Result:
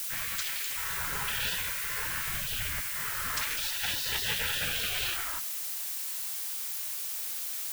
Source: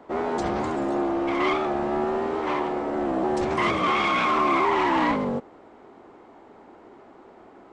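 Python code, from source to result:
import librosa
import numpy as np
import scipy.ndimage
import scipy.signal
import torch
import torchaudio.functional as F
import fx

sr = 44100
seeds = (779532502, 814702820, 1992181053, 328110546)

y = fx.spec_gate(x, sr, threshold_db=-25, keep='weak')
y = fx.low_shelf(y, sr, hz=390.0, db=9.5, at=(2.27, 2.81))
y = fx.dmg_noise_colour(y, sr, seeds[0], colour='blue', level_db=-43.0)
y = F.gain(torch.from_numpy(y), 7.5).numpy()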